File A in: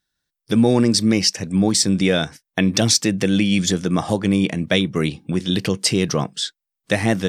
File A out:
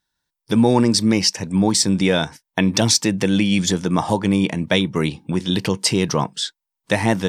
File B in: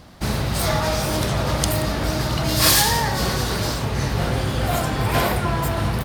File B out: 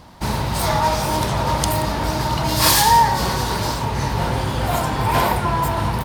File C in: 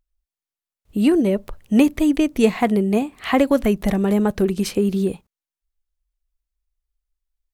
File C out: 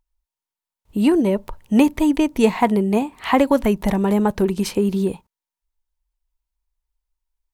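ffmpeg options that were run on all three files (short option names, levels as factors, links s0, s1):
-af "equalizer=f=930:t=o:w=0.23:g=13"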